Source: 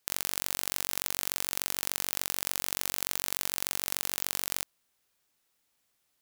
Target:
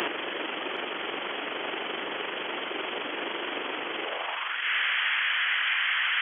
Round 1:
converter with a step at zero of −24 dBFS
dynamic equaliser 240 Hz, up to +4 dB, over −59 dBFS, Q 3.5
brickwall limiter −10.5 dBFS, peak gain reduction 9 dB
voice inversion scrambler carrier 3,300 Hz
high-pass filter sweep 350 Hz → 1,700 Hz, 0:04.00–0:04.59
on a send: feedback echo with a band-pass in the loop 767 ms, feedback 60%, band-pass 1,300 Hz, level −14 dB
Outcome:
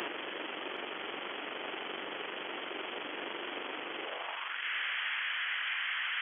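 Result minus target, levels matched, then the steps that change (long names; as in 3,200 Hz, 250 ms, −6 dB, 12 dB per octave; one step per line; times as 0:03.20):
converter with a step at zero: distortion −8 dB
change: converter with a step at zero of −15.5 dBFS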